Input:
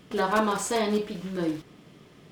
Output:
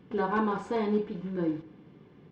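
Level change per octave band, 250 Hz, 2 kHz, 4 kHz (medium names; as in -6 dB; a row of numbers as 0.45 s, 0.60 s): -1.0 dB, -6.0 dB, -14.0 dB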